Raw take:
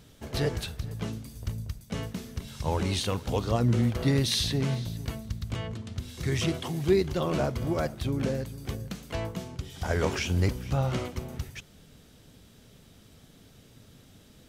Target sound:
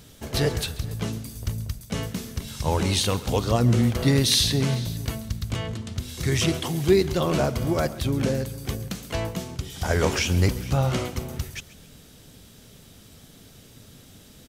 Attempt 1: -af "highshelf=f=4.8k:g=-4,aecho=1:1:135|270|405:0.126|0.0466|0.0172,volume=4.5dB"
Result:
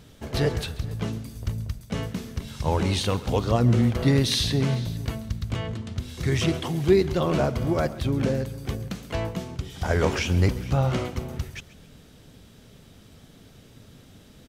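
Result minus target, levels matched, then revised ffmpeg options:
8000 Hz band -6.5 dB
-af "highshelf=f=4.8k:g=6.5,aecho=1:1:135|270|405:0.126|0.0466|0.0172,volume=4.5dB"

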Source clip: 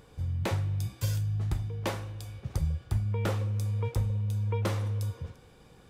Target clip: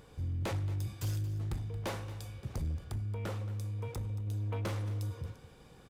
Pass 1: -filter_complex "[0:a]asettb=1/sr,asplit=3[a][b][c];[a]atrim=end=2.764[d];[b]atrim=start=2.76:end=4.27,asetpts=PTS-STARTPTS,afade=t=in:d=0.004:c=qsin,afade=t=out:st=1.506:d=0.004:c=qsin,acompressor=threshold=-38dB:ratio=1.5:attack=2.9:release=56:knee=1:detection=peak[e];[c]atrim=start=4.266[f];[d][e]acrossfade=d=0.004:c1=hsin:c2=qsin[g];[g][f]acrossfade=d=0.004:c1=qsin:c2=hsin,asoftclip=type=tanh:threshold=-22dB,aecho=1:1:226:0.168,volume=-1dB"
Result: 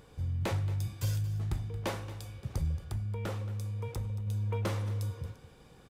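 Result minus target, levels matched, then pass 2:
soft clip: distortion -9 dB
-filter_complex "[0:a]asettb=1/sr,asplit=3[a][b][c];[a]atrim=end=2.764[d];[b]atrim=start=2.76:end=4.27,asetpts=PTS-STARTPTS,afade=t=in:d=0.004:c=qsin,afade=t=out:st=1.506:d=0.004:c=qsin,acompressor=threshold=-38dB:ratio=1.5:attack=2.9:release=56:knee=1:detection=peak[e];[c]atrim=start=4.266[f];[d][e]acrossfade=d=0.004:c1=hsin:c2=qsin[g];[g][f]acrossfade=d=0.004:c1=qsin:c2=hsin,asoftclip=type=tanh:threshold=-29.5dB,aecho=1:1:226:0.168,volume=-1dB"

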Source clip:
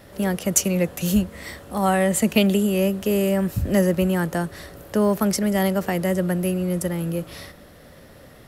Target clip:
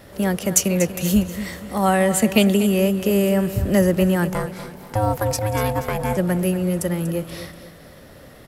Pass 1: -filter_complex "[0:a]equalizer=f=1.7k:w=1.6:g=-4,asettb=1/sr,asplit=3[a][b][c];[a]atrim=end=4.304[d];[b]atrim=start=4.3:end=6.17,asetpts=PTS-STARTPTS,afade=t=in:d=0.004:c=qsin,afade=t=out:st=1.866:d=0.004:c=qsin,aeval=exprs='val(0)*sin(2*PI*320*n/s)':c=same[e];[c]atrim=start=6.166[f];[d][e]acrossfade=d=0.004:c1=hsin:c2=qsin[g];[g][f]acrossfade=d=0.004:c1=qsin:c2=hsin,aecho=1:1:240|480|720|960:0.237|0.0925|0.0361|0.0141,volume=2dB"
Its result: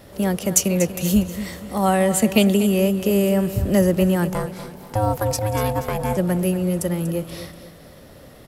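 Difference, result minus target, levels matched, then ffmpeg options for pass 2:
2000 Hz band -2.5 dB
-filter_complex "[0:a]asettb=1/sr,asplit=3[a][b][c];[a]atrim=end=4.304[d];[b]atrim=start=4.3:end=6.17,asetpts=PTS-STARTPTS,afade=t=in:d=0.004:c=qsin,afade=t=out:st=1.866:d=0.004:c=qsin,aeval=exprs='val(0)*sin(2*PI*320*n/s)':c=same[e];[c]atrim=start=6.166[f];[d][e]acrossfade=d=0.004:c1=hsin:c2=qsin[g];[g][f]acrossfade=d=0.004:c1=qsin:c2=hsin,aecho=1:1:240|480|720|960:0.237|0.0925|0.0361|0.0141,volume=2dB"

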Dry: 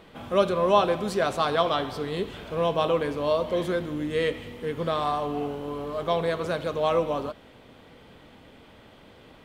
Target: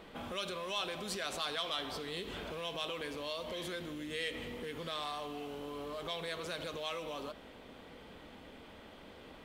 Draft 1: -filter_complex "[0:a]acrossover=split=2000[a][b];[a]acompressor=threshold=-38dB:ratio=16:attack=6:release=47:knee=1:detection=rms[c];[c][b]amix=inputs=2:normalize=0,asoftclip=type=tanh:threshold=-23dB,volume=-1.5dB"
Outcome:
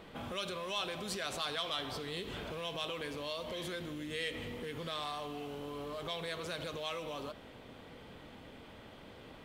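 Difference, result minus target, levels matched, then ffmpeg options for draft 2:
125 Hz band +3.5 dB
-filter_complex "[0:a]acrossover=split=2000[a][b];[a]acompressor=threshold=-38dB:ratio=16:attack=6:release=47:knee=1:detection=rms,equalizer=f=120:w=3:g=-10.5[c];[c][b]amix=inputs=2:normalize=0,asoftclip=type=tanh:threshold=-23dB,volume=-1.5dB"

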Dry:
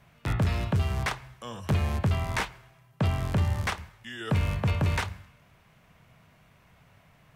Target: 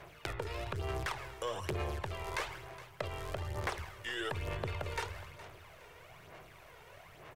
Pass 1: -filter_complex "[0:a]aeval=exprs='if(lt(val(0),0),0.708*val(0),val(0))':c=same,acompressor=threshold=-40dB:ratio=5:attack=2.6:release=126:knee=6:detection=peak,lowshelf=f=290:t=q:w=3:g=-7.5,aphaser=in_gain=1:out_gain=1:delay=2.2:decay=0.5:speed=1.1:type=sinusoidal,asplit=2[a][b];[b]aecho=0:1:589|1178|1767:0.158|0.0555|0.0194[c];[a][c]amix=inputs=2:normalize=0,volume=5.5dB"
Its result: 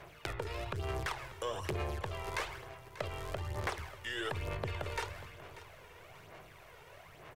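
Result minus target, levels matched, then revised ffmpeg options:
echo 0.173 s late
-filter_complex "[0:a]aeval=exprs='if(lt(val(0),0),0.708*val(0),val(0))':c=same,acompressor=threshold=-40dB:ratio=5:attack=2.6:release=126:knee=6:detection=peak,lowshelf=f=290:t=q:w=3:g=-7.5,aphaser=in_gain=1:out_gain=1:delay=2.2:decay=0.5:speed=1.1:type=sinusoidal,asplit=2[a][b];[b]aecho=0:1:416|832|1248:0.158|0.0555|0.0194[c];[a][c]amix=inputs=2:normalize=0,volume=5.5dB"

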